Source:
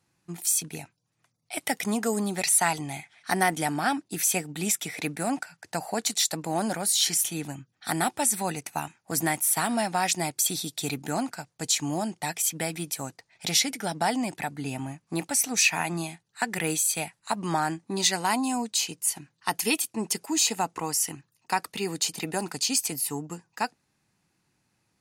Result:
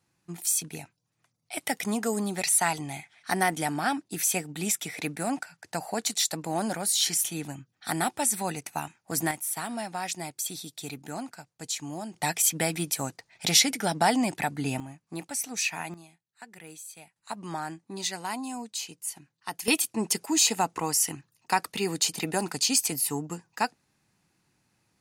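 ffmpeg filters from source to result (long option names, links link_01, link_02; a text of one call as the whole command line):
ffmpeg -i in.wav -af "asetnsamples=nb_out_samples=441:pad=0,asendcmd='9.31 volume volume -7.5dB;12.14 volume volume 3dB;14.8 volume volume -7dB;15.94 volume volume -18.5dB;17.16 volume volume -8dB;19.68 volume volume 1.5dB',volume=-1.5dB" out.wav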